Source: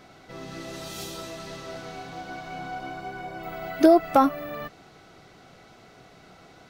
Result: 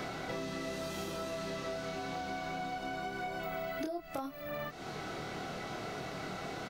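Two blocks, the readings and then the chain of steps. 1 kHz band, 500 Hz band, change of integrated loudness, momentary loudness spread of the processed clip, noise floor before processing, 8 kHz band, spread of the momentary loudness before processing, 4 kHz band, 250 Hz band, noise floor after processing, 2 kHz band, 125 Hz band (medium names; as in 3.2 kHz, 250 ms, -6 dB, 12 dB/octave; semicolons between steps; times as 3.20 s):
-11.0 dB, -12.0 dB, -13.0 dB, 3 LU, -52 dBFS, -4.5 dB, 20 LU, -3.0 dB, -14.5 dB, -46 dBFS, -2.5 dB, -1.5 dB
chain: compression 3:1, threshold -39 dBFS, peak gain reduction 20 dB; doubling 26 ms -3 dB; three bands compressed up and down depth 100%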